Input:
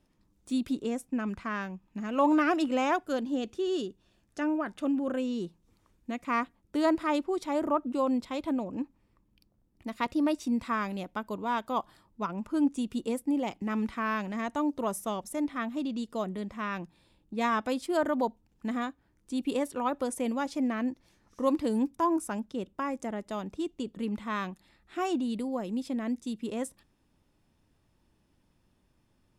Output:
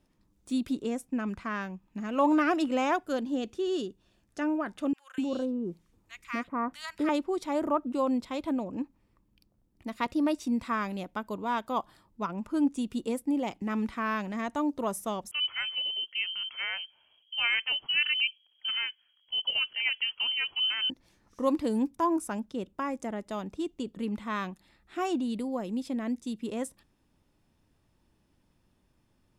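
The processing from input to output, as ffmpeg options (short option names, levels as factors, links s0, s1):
-filter_complex "[0:a]asettb=1/sr,asplit=3[s0][s1][s2];[s0]atrim=end=4.934[s3];[s1]atrim=start=4.93:end=7.09,asetpts=PTS-STARTPTS,afade=t=in:d=0.004:c=qsin,afade=t=out:st=2.156:d=0.004:c=qsin,acrossover=split=1400[s4][s5];[s4]adelay=250[s6];[s6][s5]amix=inputs=2:normalize=0,atrim=end_sample=95256[s7];[s2]atrim=start=7.086[s8];[s3][s7]acrossfade=d=0.004:c1=hsin:c2=qsin[s9];[s9][s8]acrossfade=d=0.004:c1=qsin:c2=hsin,asettb=1/sr,asplit=3[s10][s11][s12];[s10]atrim=end=15.314[s13];[s11]atrim=start=15.31:end=20.9,asetpts=PTS-STARTPTS,afade=t=in:d=0.004:c=qsin,afade=t=out:st=5.586:d=0.004:c=qsin,lowpass=f=2800:t=q:w=0.5098,lowpass=f=2800:t=q:w=0.6013,lowpass=f=2800:t=q:w=0.9,lowpass=f=2800:t=q:w=2.563,afreqshift=-3300[s14];[s12]atrim=start=20.896[s15];[s13][s14]acrossfade=d=0.004:c1=hsin:c2=qsin[s16];[s16][s15]acrossfade=d=0.004:c1=qsin:c2=hsin"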